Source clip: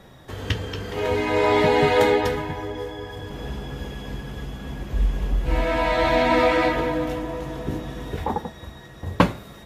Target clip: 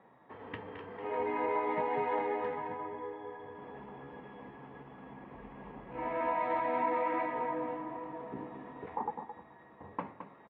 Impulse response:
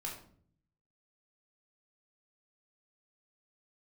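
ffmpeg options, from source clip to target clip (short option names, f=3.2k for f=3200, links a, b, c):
-filter_complex "[0:a]highpass=280,equalizer=f=360:t=q:w=4:g=-5,equalizer=f=590:t=q:w=4:g=-5,equalizer=f=940:t=q:w=4:g=5,equalizer=f=1.5k:t=q:w=4:g=-8,lowpass=f=2k:w=0.5412,lowpass=f=2k:w=1.3066,alimiter=limit=-14dB:level=0:latency=1:release=402,atempo=0.92,asplit=2[a][b];[b]aecho=0:1:217:0.335[c];[a][c]amix=inputs=2:normalize=0,volume=-8.5dB"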